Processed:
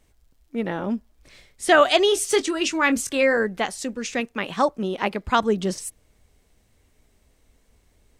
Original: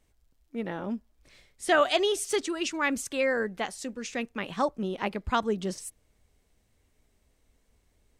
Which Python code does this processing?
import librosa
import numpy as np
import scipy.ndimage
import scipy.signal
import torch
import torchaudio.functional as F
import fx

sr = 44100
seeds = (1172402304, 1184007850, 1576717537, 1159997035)

y = fx.doubler(x, sr, ms=22.0, db=-11, at=(2.06, 3.38))
y = fx.low_shelf(y, sr, hz=150.0, db=-7.5, at=(4.2, 5.39))
y = y * librosa.db_to_amplitude(7.0)